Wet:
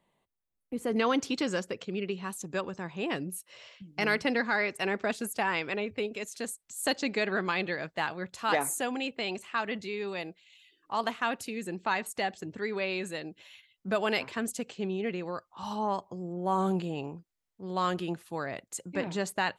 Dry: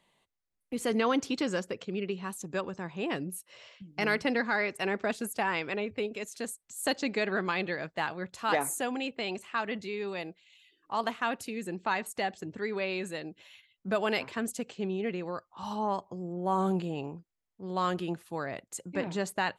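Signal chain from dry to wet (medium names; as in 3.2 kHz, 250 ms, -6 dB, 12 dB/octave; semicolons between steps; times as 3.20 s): peaking EQ 4.9 kHz -10.5 dB 3 oct, from 0.96 s +2 dB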